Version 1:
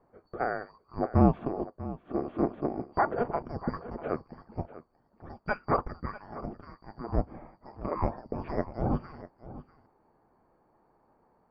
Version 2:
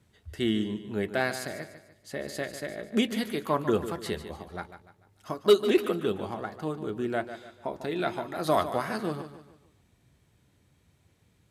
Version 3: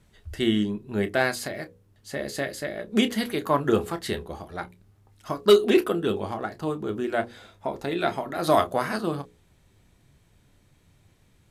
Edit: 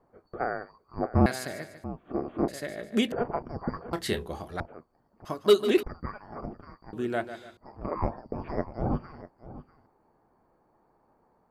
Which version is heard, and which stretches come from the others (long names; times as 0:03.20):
1
0:01.26–0:01.84: punch in from 2
0:02.48–0:03.12: punch in from 2
0:03.93–0:04.60: punch in from 3
0:05.25–0:05.83: punch in from 2
0:06.93–0:07.57: punch in from 2